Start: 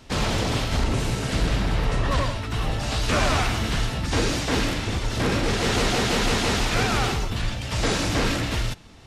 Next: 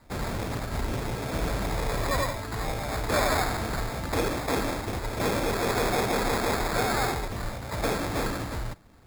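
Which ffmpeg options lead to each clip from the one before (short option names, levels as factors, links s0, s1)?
-filter_complex "[0:a]acrossover=split=390|1300[s0][s1][s2];[s1]dynaudnorm=f=120:g=17:m=2.82[s3];[s0][s3][s2]amix=inputs=3:normalize=0,acrusher=samples=15:mix=1:aa=0.000001,volume=0.422"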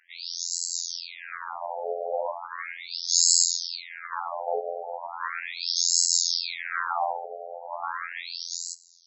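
-af "aexciter=amount=6.5:drive=7.4:freq=5000,afftfilt=real='hypot(re,im)*cos(PI*b)':imag='0':win_size=2048:overlap=0.75,afftfilt=real='re*between(b*sr/1024,570*pow(5600/570,0.5+0.5*sin(2*PI*0.37*pts/sr))/1.41,570*pow(5600/570,0.5+0.5*sin(2*PI*0.37*pts/sr))*1.41)':imag='im*between(b*sr/1024,570*pow(5600/570,0.5+0.5*sin(2*PI*0.37*pts/sr))/1.41,570*pow(5600/570,0.5+0.5*sin(2*PI*0.37*pts/sr))*1.41)':win_size=1024:overlap=0.75,volume=2.37"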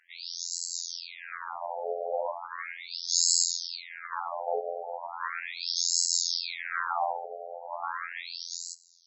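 -af "highshelf=f=6500:g=-5,volume=0.794"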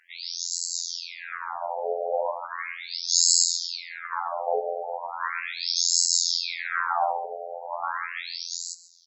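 -filter_complex "[0:a]asplit=2[s0][s1];[s1]adelay=134.1,volume=0.158,highshelf=f=4000:g=-3.02[s2];[s0][s2]amix=inputs=2:normalize=0,volume=1.68"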